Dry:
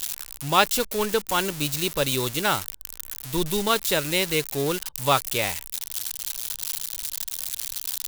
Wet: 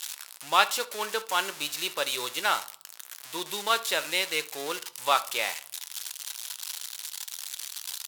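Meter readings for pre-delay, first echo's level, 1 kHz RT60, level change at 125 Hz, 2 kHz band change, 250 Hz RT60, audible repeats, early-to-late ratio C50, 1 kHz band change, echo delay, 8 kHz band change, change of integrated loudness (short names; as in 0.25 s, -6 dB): 6 ms, -21.0 dB, 0.50 s, -24.0 dB, -1.5 dB, 0.65 s, 1, 17.5 dB, -2.0 dB, 71 ms, -5.0 dB, -4.0 dB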